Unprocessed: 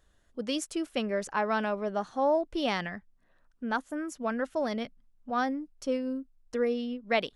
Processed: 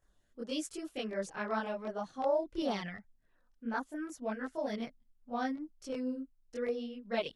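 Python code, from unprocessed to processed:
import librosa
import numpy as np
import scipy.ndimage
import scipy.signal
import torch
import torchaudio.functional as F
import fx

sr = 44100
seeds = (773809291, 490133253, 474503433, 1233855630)

y = fx.filter_lfo_notch(x, sr, shape='saw_down', hz=2.7, low_hz=520.0, high_hz=4000.0, q=2.1)
y = fx.chorus_voices(y, sr, voices=2, hz=0.95, base_ms=23, depth_ms=4.3, mix_pct=65)
y = y * 10.0 ** (-3.0 / 20.0)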